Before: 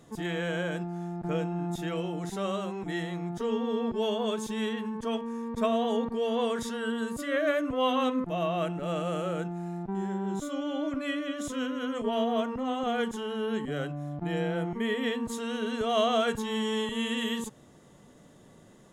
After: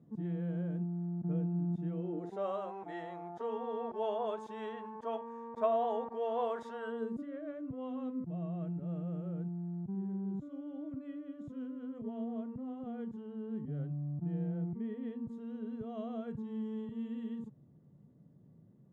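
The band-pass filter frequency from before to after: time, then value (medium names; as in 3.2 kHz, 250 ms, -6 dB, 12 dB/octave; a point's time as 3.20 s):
band-pass filter, Q 1.9
1.92 s 180 Hz
2.48 s 760 Hz
6.87 s 760 Hz
7.32 s 140 Hz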